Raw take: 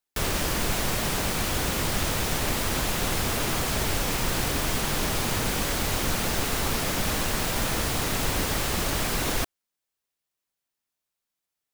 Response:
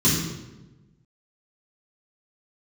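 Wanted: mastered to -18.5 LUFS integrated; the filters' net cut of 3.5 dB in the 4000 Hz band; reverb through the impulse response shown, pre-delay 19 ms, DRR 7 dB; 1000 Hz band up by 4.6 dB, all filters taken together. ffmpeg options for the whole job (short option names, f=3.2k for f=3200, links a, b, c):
-filter_complex "[0:a]equalizer=f=1k:t=o:g=6,equalizer=f=4k:t=o:g=-5,asplit=2[a][b];[1:a]atrim=start_sample=2205,adelay=19[c];[b][c]afir=irnorm=-1:irlink=0,volume=-22.5dB[d];[a][d]amix=inputs=2:normalize=0,volume=4.5dB"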